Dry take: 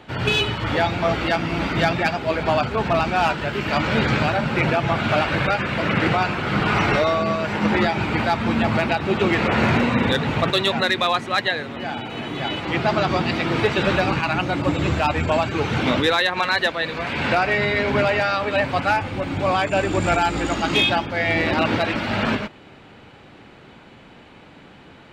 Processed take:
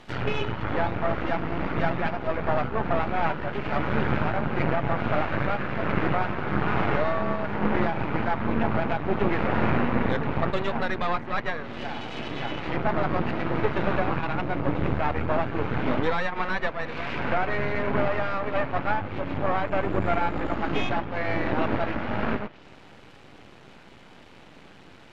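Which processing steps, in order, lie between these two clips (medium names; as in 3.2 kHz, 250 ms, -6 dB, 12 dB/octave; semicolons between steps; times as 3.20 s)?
half-wave rectifier; low-pass that closes with the level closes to 1.7 kHz, closed at -23 dBFS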